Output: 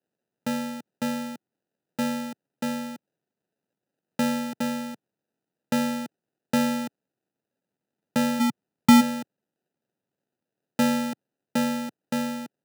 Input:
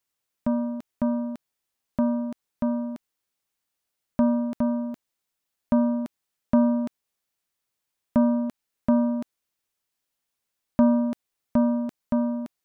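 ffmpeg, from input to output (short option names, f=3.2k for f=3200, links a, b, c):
-filter_complex "[0:a]asplit=3[a][b][c];[a]afade=t=out:st=8.39:d=0.02[d];[b]asubboost=boost=12:cutoff=180,afade=t=in:st=8.39:d=0.02,afade=t=out:st=9:d=0.02[e];[c]afade=t=in:st=9:d=0.02[f];[d][e][f]amix=inputs=3:normalize=0,acrusher=samples=40:mix=1:aa=0.000001,highpass=f=130:w=0.5412,highpass=f=130:w=1.3066,volume=-3.5dB"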